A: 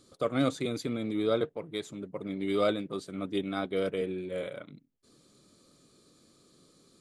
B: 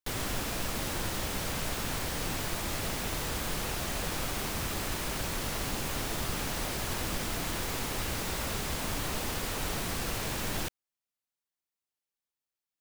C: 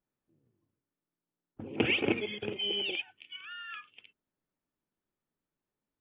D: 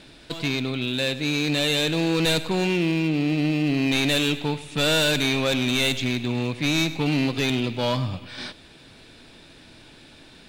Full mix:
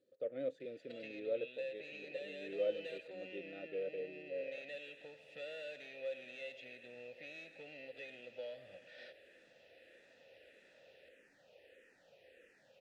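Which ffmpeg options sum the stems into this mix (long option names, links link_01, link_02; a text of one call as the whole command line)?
ffmpeg -i stem1.wav -i stem2.wav -i stem3.wav -i stem4.wav -filter_complex "[0:a]lowshelf=frequency=390:gain=10,volume=-7.5dB[link_01];[1:a]asplit=2[link_02][link_03];[link_03]afreqshift=-1.6[link_04];[link_02][link_04]amix=inputs=2:normalize=1,adelay=2350,volume=-14dB,asplit=3[link_05][link_06][link_07];[link_05]atrim=end=3.08,asetpts=PTS-STARTPTS,afade=type=out:start_time=3.076:duration=0.004:curve=hsin[link_08];[link_06]atrim=start=3.08:end=4.84,asetpts=PTS-STARTPTS,volume=0[link_09];[link_07]atrim=start=4.84,asetpts=PTS-STARTPTS,afade=type=in:duration=0.004:curve=hsin[link_10];[link_08][link_09][link_10]concat=n=3:v=0:a=1[link_11];[2:a]alimiter=limit=-22dB:level=0:latency=1:release=315,volume=-11dB[link_12];[3:a]lowshelf=frequency=120:gain=-11.5,acompressor=threshold=-30dB:ratio=6,aecho=1:1:1.5:0.44,adelay=600,volume=-5.5dB[link_13];[link_01][link_11][link_12][link_13]amix=inputs=4:normalize=0,asplit=3[link_14][link_15][link_16];[link_14]bandpass=frequency=530:width_type=q:width=8,volume=0dB[link_17];[link_15]bandpass=frequency=1840:width_type=q:width=8,volume=-6dB[link_18];[link_16]bandpass=frequency=2480:width_type=q:width=8,volume=-9dB[link_19];[link_17][link_18][link_19]amix=inputs=3:normalize=0" out.wav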